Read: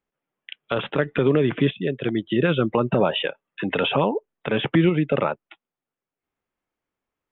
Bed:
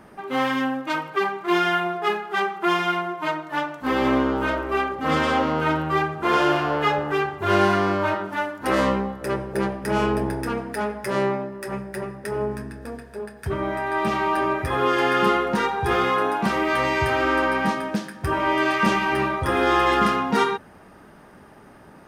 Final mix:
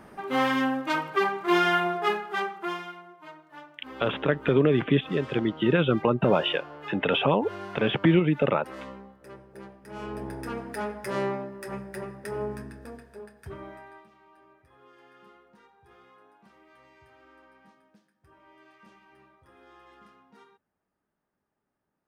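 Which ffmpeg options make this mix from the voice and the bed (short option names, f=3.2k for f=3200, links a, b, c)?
-filter_complex "[0:a]adelay=3300,volume=-2dB[a];[1:a]volume=13dB,afade=t=out:st=1.96:d=0.98:silence=0.112202,afade=t=in:st=9.89:d=0.8:silence=0.188365,afade=t=out:st=12.6:d=1.47:silence=0.0334965[b];[a][b]amix=inputs=2:normalize=0"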